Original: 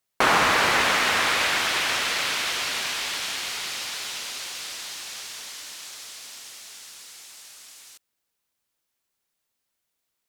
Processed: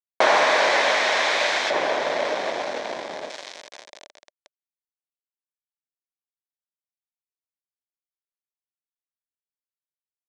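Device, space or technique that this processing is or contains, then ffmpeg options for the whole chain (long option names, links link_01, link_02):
hand-held game console: -filter_complex "[0:a]acrusher=bits=3:mix=0:aa=0.000001,highpass=430,equalizer=frequency=600:width_type=q:width=4:gain=9,equalizer=frequency=1300:width_type=q:width=4:gain=-9,equalizer=frequency=2800:width_type=q:width=4:gain=-8,equalizer=frequency=4700:width_type=q:width=4:gain=-5,lowpass=frequency=5300:width=0.5412,lowpass=frequency=5300:width=1.3066,asettb=1/sr,asplit=3[link_01][link_02][link_03];[link_01]atrim=end=1.704[link_04];[link_02]atrim=start=1.7:end=3.3,asetpts=PTS-STARTPTS,afade=type=in:duration=0.004:curve=qsin,afade=type=out:start_time=1.596:duration=0.004:curve=qsin,tiltshelf=frequency=1400:gain=9.5[link_05];[link_03]atrim=start=3.296[link_06];[link_04][link_05]acrossfade=duration=0.004:curve1=hsin:curve2=qsin[link_07];[link_07][link_06]acrossfade=duration=0.004:curve1=qsin:curve2=hsin,volume=3dB"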